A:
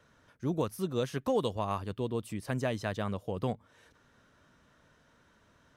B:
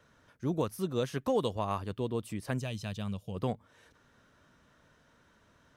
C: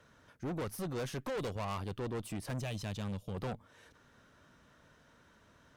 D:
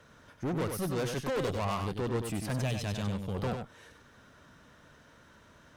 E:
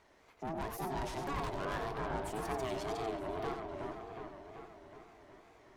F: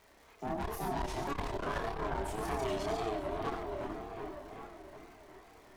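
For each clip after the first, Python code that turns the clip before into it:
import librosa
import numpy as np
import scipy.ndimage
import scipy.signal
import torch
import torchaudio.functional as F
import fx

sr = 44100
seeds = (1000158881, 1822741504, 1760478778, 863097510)

y1 = fx.spec_box(x, sr, start_s=2.59, length_s=0.76, low_hz=220.0, high_hz=2300.0, gain_db=-10)
y2 = fx.tube_stage(y1, sr, drive_db=38.0, bias=0.55)
y2 = y2 * 10.0 ** (3.5 / 20.0)
y3 = y2 + 10.0 ** (-6.0 / 20.0) * np.pad(y2, (int(96 * sr / 1000.0), 0))[:len(y2)]
y3 = y3 * 10.0 ** (5.0 / 20.0)
y4 = y3 * np.sin(2.0 * np.pi * 530.0 * np.arange(len(y3)) / sr)
y4 = fx.echo_wet_lowpass(y4, sr, ms=372, feedback_pct=61, hz=2400.0, wet_db=-3.5)
y4 = fx.wow_flutter(y4, sr, seeds[0], rate_hz=2.1, depth_cents=140.0)
y4 = y4 * 10.0 ** (-4.5 / 20.0)
y5 = fx.dmg_crackle(y4, sr, seeds[1], per_s=360.0, level_db=-55.0)
y5 = fx.chorus_voices(y5, sr, voices=6, hz=0.46, base_ms=29, depth_ms=2.7, mix_pct=45)
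y5 = fx.transformer_sat(y5, sr, knee_hz=120.0)
y5 = y5 * 10.0 ** (6.0 / 20.0)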